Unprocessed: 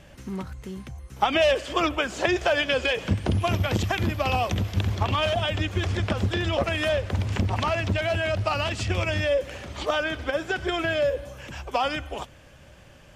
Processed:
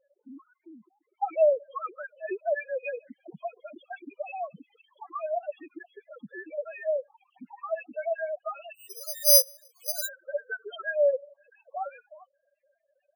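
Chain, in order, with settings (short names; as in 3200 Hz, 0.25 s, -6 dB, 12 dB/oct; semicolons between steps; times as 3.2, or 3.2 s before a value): sine-wave speech; 8.74–10.09 careless resampling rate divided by 8×, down none, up zero stuff; loudest bins only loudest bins 4; gain -6.5 dB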